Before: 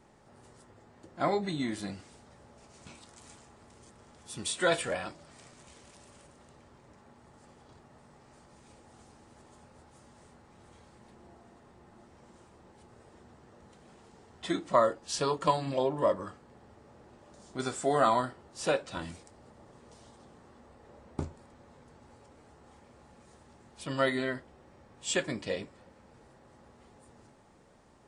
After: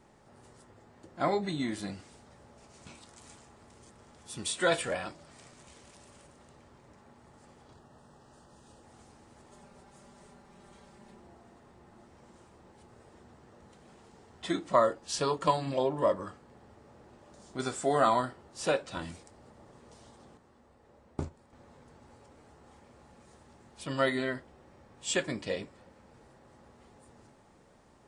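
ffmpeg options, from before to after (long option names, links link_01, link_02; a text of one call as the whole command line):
ffmpeg -i in.wav -filter_complex "[0:a]asettb=1/sr,asplit=3[link_01][link_02][link_03];[link_01]atrim=end=7.744[link_04];[link_02]atrim=start=7.74:end=8.83,asetpts=PTS-STARTPTS,afade=type=in:duration=0.004:curve=qsin,afade=type=out:start_time=1.086:duration=0.004:curve=qsin,asuperstop=centerf=2200:order=4:qfactor=3.3[link_05];[link_03]atrim=start=8.826[link_06];[link_04][link_05]acrossfade=duration=0.004:curve1=hsin:curve2=qsin[link_07];[link_07][link_06]acrossfade=duration=0.004:curve1=qsin:curve2=hsin,asettb=1/sr,asplit=3[link_08][link_09][link_10];[link_08]atrim=end=9.514[link_11];[link_09]atrim=start=9.51:end=11.2,asetpts=PTS-STARTPTS,afade=type=in:duration=0.004:curve=qsin,afade=type=out:start_time=1.686:duration=0.004:curve=qsin,aecho=1:1:5.1:0.65,atrim=end_sample=74529[link_12];[link_10]atrim=start=11.196[link_13];[link_11][link_12]acrossfade=duration=0.004:curve1=hsin:curve2=qsin[link_14];[link_14][link_13]acrossfade=duration=0.004:curve1=qsin:curve2=hsin,asettb=1/sr,asplit=3[link_15][link_16][link_17];[link_15]atrim=end=20.374[link_18];[link_16]atrim=start=20.37:end=21.53,asetpts=PTS-STARTPTS,afade=type=in:duration=0.004:curve=qsin,afade=type=out:start_time=1.156:duration=0.004:curve=qsin,agate=range=-6dB:threshold=-43dB:ratio=16:release=100:detection=peak[link_19];[link_17]atrim=start=21.526[link_20];[link_18][link_19]acrossfade=duration=0.004:curve1=hsin:curve2=qsin[link_21];[link_21][link_20]acrossfade=duration=0.004:curve1=qsin:curve2=hsin" out.wav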